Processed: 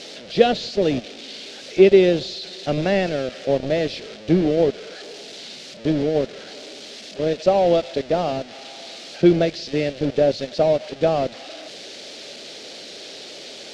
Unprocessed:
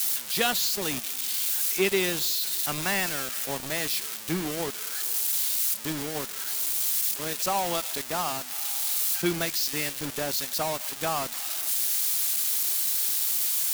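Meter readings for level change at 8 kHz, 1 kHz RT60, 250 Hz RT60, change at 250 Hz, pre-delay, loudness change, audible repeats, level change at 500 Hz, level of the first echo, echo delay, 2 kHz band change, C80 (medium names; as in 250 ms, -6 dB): -15.5 dB, no reverb, no reverb, +13.0 dB, no reverb, +5.0 dB, no echo, +15.0 dB, no echo, no echo, 0.0 dB, no reverb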